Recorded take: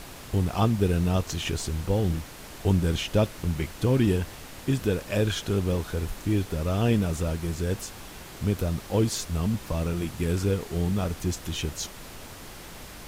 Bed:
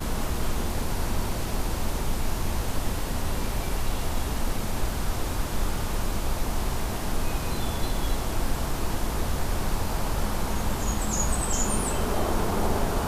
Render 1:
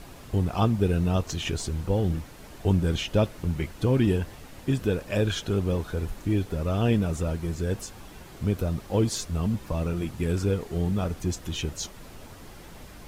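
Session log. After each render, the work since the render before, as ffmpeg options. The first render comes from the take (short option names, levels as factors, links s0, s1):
-af "afftdn=nr=7:nf=-43"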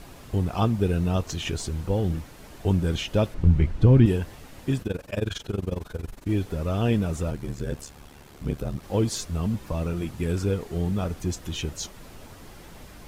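-filter_complex "[0:a]asettb=1/sr,asplit=3[s0][s1][s2];[s0]atrim=end=3.344[s3];[s1]atrim=start=3.34:end=4.06,asetpts=PTS-STARTPTS,afade=t=in:d=0.004:c=qsin,afade=t=out:st=0.716:d=0.004:c=qsin,aemphasis=mode=reproduction:type=bsi[s4];[s2]atrim=start=4.056[s5];[s3][s4]acrossfade=d=0.004:c1=hsin:c2=qsin[s6];[s6][s5]acrossfade=d=0.004:c1=qsin:c2=hsin,asettb=1/sr,asplit=3[s7][s8][s9];[s7]atrim=end=4.824[s10];[s8]atrim=start=4.82:end=6.29,asetpts=PTS-STARTPTS,afade=t=in:d=0.004:c=qsin,afade=t=out:st=1.466:d=0.004:c=qsin,tremolo=f=22:d=0.919[s11];[s9]atrim=start=6.286[s12];[s10][s11]acrossfade=d=0.004:c1=hsin:c2=qsin[s13];[s13][s12]acrossfade=d=0.004:c1=qsin:c2=hsin,asettb=1/sr,asplit=3[s14][s15][s16];[s14]atrim=end=7.304[s17];[s15]atrim=start=7.3:end=8.83,asetpts=PTS-STARTPTS,afade=t=in:d=0.004:c=qsin,afade=t=out:st=1.526:d=0.004:c=qsin,aeval=exprs='val(0)*sin(2*PI*36*n/s)':c=same[s18];[s16]atrim=start=8.826[s19];[s17][s18]acrossfade=d=0.004:c1=hsin:c2=qsin[s20];[s20][s19]acrossfade=d=0.004:c1=qsin:c2=hsin"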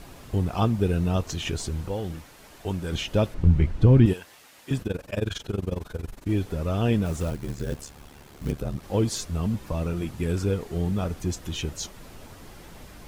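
-filter_complex "[0:a]asettb=1/sr,asplit=3[s0][s1][s2];[s0]atrim=end=1.884[s3];[s1]atrim=start=1.88:end=2.92,asetpts=PTS-STARTPTS,afade=t=in:d=0.004:c=qsin,afade=t=out:st=1.036:d=0.004:c=qsin,lowshelf=f=400:g=-9[s4];[s2]atrim=start=2.916[s5];[s3][s4]acrossfade=d=0.004:c1=hsin:c2=qsin[s6];[s6][s5]acrossfade=d=0.004:c1=qsin:c2=hsin,asettb=1/sr,asplit=3[s7][s8][s9];[s7]atrim=end=4.134[s10];[s8]atrim=start=4.13:end=4.71,asetpts=PTS-STARTPTS,afade=t=in:d=0.004:c=qsin,afade=t=out:st=0.576:d=0.004:c=qsin,highpass=f=1400:p=1[s11];[s9]atrim=start=4.706[s12];[s10][s11]acrossfade=d=0.004:c1=hsin:c2=qsin[s13];[s13][s12]acrossfade=d=0.004:c1=qsin:c2=hsin,asettb=1/sr,asplit=3[s14][s15][s16];[s14]atrim=end=7.054[s17];[s15]atrim=start=7.05:end=8.52,asetpts=PTS-STARTPTS,afade=t=in:d=0.004:c=qsin,afade=t=out:st=1.466:d=0.004:c=qsin,acrusher=bits=5:mode=log:mix=0:aa=0.000001[s18];[s16]atrim=start=8.516[s19];[s17][s18]acrossfade=d=0.004:c1=hsin:c2=qsin[s20];[s20][s19]acrossfade=d=0.004:c1=qsin:c2=hsin"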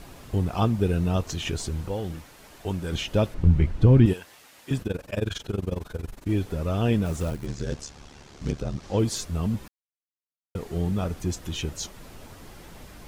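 -filter_complex "[0:a]asettb=1/sr,asplit=3[s0][s1][s2];[s0]atrim=end=7.464[s3];[s1]atrim=start=7.46:end=8.99,asetpts=PTS-STARTPTS,afade=t=in:d=0.004:c=qsin,afade=t=out:st=1.526:d=0.004:c=qsin,lowpass=f=6100:t=q:w=1.7[s4];[s2]atrim=start=8.986[s5];[s3][s4]acrossfade=d=0.004:c1=hsin:c2=qsin[s6];[s6][s5]acrossfade=d=0.004:c1=qsin:c2=hsin,asplit=3[s7][s8][s9];[s7]atrim=end=9.68,asetpts=PTS-STARTPTS,afade=t=out:st=9.676:d=0.004:c=hsin[s10];[s8]atrim=start=9.68:end=10.55,asetpts=PTS-STARTPTS,volume=0[s11];[s9]atrim=start=10.55,asetpts=PTS-STARTPTS,afade=t=in:d=0.004:c=hsin[s12];[s10][s11][s12]concat=n=3:v=0:a=1"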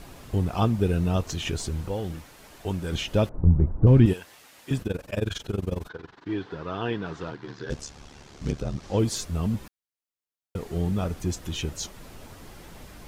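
-filter_complex "[0:a]asettb=1/sr,asplit=3[s0][s1][s2];[s0]atrim=end=3.294[s3];[s1]atrim=start=3.29:end=3.87,asetpts=PTS-STARTPTS,afade=t=in:d=0.004:c=qsin,afade=t=out:st=0.576:d=0.004:c=qsin,lowpass=f=1100:w=0.5412,lowpass=f=1100:w=1.3066[s4];[s2]atrim=start=3.866[s5];[s3][s4]acrossfade=d=0.004:c1=hsin:c2=qsin[s6];[s6][s5]acrossfade=d=0.004:c1=qsin:c2=hsin,asettb=1/sr,asplit=3[s7][s8][s9];[s7]atrim=end=5.894[s10];[s8]atrim=start=5.89:end=7.7,asetpts=PTS-STARTPTS,afade=t=in:d=0.004:c=qsin,afade=t=out:st=1.806:d=0.004:c=qsin,highpass=210,equalizer=f=220:t=q:w=4:g=-9,equalizer=f=580:t=q:w=4:g=-9,equalizer=f=1000:t=q:w=4:g=5,equalizer=f=1600:t=q:w=4:g=6,equalizer=f=2400:t=q:w=4:g=-5,lowpass=f=4500:w=0.5412,lowpass=f=4500:w=1.3066[s11];[s9]atrim=start=7.696[s12];[s10][s11]acrossfade=d=0.004:c1=hsin:c2=qsin[s13];[s13][s12]acrossfade=d=0.004:c1=qsin:c2=hsin"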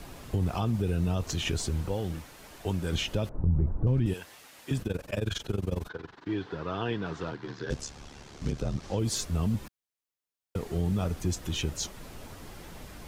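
-filter_complex "[0:a]alimiter=limit=0.133:level=0:latency=1:release=34,acrossover=split=140|3000[s0][s1][s2];[s1]acompressor=threshold=0.0316:ratio=2[s3];[s0][s3][s2]amix=inputs=3:normalize=0"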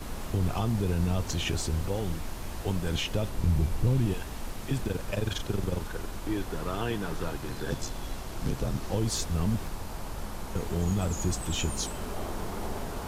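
-filter_complex "[1:a]volume=0.316[s0];[0:a][s0]amix=inputs=2:normalize=0"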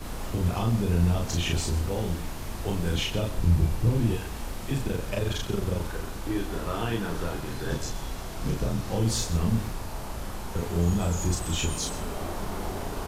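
-filter_complex "[0:a]asplit=2[s0][s1];[s1]adelay=35,volume=0.794[s2];[s0][s2]amix=inputs=2:normalize=0,aecho=1:1:127:0.2"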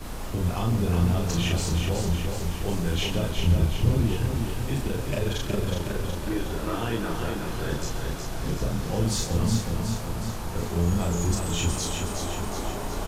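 -af "aecho=1:1:368|736|1104|1472|1840|2208|2576|2944:0.562|0.326|0.189|0.11|0.0636|0.0369|0.0214|0.0124"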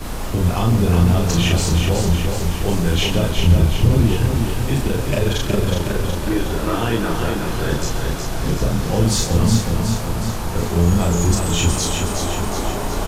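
-af "volume=2.66,alimiter=limit=0.708:level=0:latency=1"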